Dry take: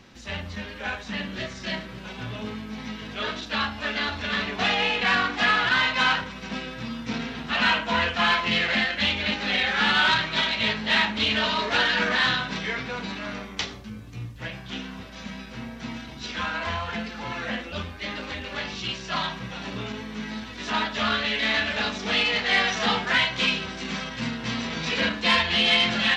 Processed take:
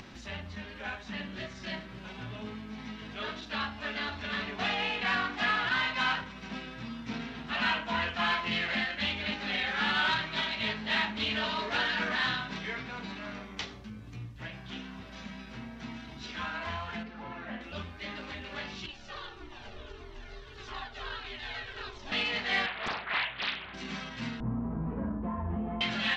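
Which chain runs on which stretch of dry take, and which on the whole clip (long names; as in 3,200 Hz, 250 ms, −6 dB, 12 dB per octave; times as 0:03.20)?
0:17.03–0:17.61: low-pass filter 1,300 Hz 6 dB per octave + parametric band 94 Hz −11.5 dB 0.63 octaves
0:18.86–0:22.12: notch filter 2,200 Hz, Q 7.1 + ring modulation 180 Hz + flanger whose copies keep moving one way falling 1.6 Hz
0:22.66–0:23.74: Butterworth low-pass 3,300 Hz 72 dB per octave + parametric band 220 Hz −12 dB 2.6 octaves + highs frequency-modulated by the lows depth 0.98 ms
0:24.40–0:25.81: Chebyshev low-pass filter 1,100 Hz, order 3 + downward compressor 2.5 to 1, threshold −30 dBFS + spectral tilt −3.5 dB per octave
whole clip: high-shelf EQ 7,200 Hz −9.5 dB; notch filter 500 Hz, Q 12; upward compression, threshold −32 dBFS; level −7 dB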